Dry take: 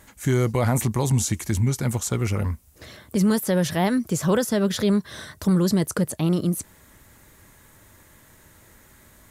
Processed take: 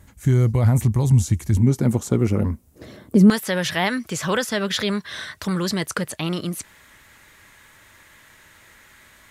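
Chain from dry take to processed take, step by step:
parametric band 77 Hz +14.5 dB 2.9 octaves, from 0:01.57 270 Hz, from 0:03.30 2,400 Hz
level −5.5 dB

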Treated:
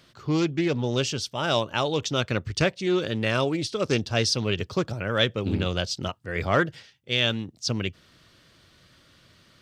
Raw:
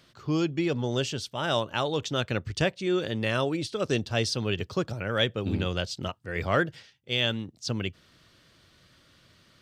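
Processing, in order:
dynamic equaliser 5,500 Hz, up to +5 dB, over −47 dBFS, Q 2.2
highs frequency-modulated by the lows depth 0.18 ms
level +2.5 dB

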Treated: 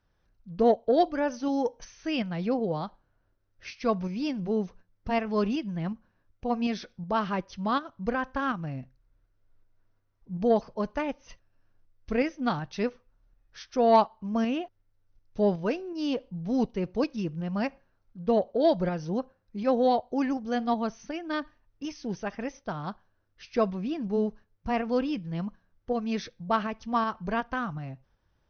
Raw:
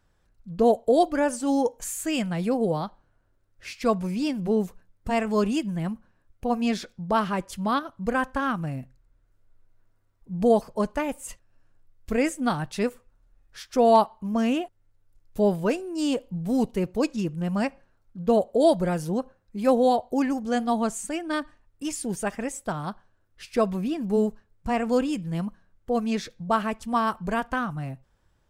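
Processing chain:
linear-phase brick-wall low-pass 6,300 Hz
shaped tremolo saw up 2.7 Hz, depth 35%
harmonic generator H 3 −23 dB, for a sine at −7.5 dBFS

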